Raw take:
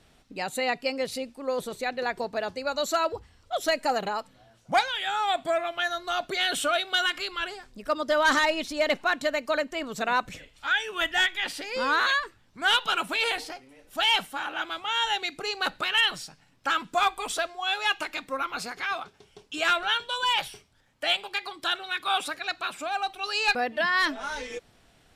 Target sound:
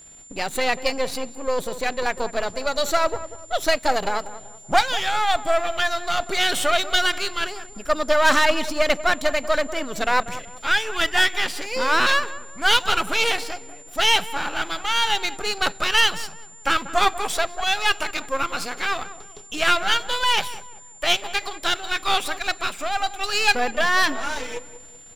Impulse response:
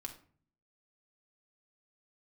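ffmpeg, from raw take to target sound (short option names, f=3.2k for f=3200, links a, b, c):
-filter_complex "[0:a]aeval=exprs='if(lt(val(0),0),0.251*val(0),val(0))':c=same,asplit=2[a][b];[b]adelay=190,lowpass=f=1.2k:p=1,volume=-12.5dB,asplit=2[c][d];[d]adelay=190,lowpass=f=1.2k:p=1,volume=0.41,asplit=2[e][f];[f]adelay=190,lowpass=f=1.2k:p=1,volume=0.41,asplit=2[g][h];[h]adelay=190,lowpass=f=1.2k:p=1,volume=0.41[i];[a][c][e][g][i]amix=inputs=5:normalize=0,aeval=exprs='val(0)+0.00251*sin(2*PI*7200*n/s)':c=same,volume=8dB"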